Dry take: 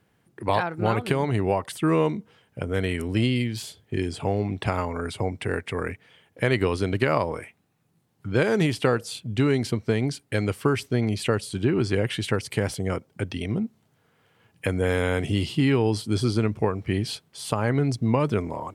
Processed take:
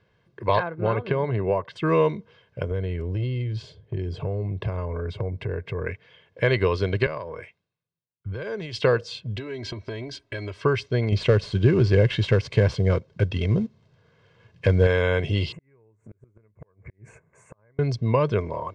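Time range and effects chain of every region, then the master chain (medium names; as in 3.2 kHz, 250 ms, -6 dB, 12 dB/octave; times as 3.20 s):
0.59–1.76 s: high-pass 100 Hz + tape spacing loss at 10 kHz 25 dB
2.71–5.86 s: tilt shelf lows +7.5 dB, about 660 Hz + band-stop 230 Hz, Q 5.7 + compression 2.5:1, threshold -28 dBFS
7.06–8.82 s: compression 16:1, threshold -29 dBFS + three bands expanded up and down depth 100%
9.36–10.62 s: comb 3.1 ms, depth 84% + compression 12:1, threshold -28 dBFS
11.12–14.87 s: CVSD coder 64 kbps + bass shelf 330 Hz +7.5 dB
15.52–17.79 s: elliptic band-stop 2.2–7 kHz + inverted gate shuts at -15 dBFS, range -38 dB + compression 8:1, threshold -39 dBFS
whole clip: low-pass 5.2 kHz 24 dB/octave; comb 1.9 ms, depth 58%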